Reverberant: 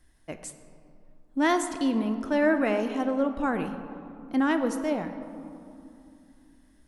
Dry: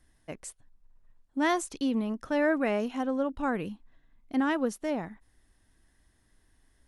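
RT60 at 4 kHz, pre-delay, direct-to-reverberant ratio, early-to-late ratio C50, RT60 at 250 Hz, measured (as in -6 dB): 1.3 s, 3 ms, 7.5 dB, 9.5 dB, 3.8 s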